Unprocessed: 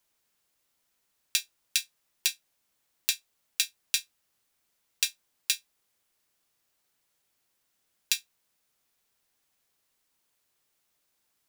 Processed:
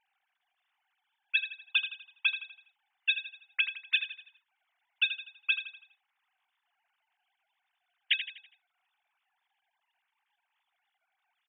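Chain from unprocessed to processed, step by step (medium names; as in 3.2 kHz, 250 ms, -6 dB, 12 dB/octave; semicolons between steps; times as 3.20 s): formants replaced by sine waves; feedback delay 82 ms, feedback 43%, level -10 dB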